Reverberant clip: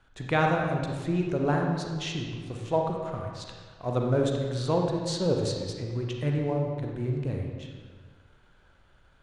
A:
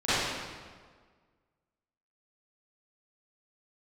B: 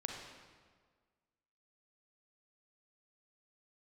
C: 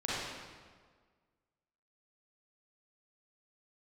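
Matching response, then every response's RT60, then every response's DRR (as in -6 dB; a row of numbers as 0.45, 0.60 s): B; 1.6, 1.6, 1.6 s; -18.0, 1.0, -9.0 dB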